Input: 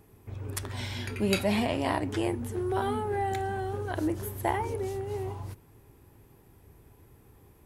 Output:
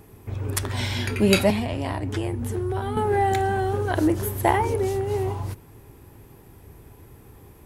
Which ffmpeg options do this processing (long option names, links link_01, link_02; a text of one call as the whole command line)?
ffmpeg -i in.wav -filter_complex "[0:a]asplit=2[link_01][link_02];[link_02]aeval=exprs='clip(val(0),-1,0.0501)':channel_layout=same,volume=-8.5dB[link_03];[link_01][link_03]amix=inputs=2:normalize=0,asettb=1/sr,asplit=3[link_04][link_05][link_06];[link_04]atrim=end=1.504[link_07];[link_05]atrim=start=1.5:end=2.97,asetpts=PTS-STARTPTS,afade=type=in:duration=0.004:curve=qsin,afade=type=out:start_time=1.466:duration=0.004:curve=qsin,acrossover=split=140[link_08][link_09];[link_09]acompressor=threshold=-34dB:ratio=4[link_10];[link_08][link_10]amix=inputs=2:normalize=0[link_11];[link_06]atrim=start=2.966[link_12];[link_07][link_11]acrossfade=duration=0.004:curve1=hsin:curve2=qsin[link_13];[link_13][link_12]acrossfade=duration=0.004:curve1=qsin:curve2=hsin,volume=6dB" out.wav